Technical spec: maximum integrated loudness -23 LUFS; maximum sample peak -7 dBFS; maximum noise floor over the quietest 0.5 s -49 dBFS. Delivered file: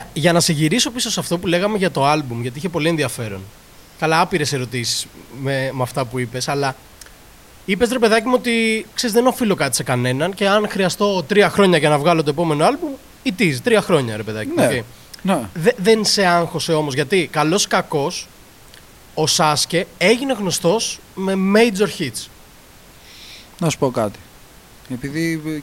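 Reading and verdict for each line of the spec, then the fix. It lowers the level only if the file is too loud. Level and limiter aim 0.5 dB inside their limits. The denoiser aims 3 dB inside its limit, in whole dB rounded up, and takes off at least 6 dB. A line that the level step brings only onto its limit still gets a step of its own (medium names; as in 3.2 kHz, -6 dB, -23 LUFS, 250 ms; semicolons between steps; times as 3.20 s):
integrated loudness -18.0 LUFS: fail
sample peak -2.0 dBFS: fail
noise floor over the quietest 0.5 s -44 dBFS: fail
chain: trim -5.5 dB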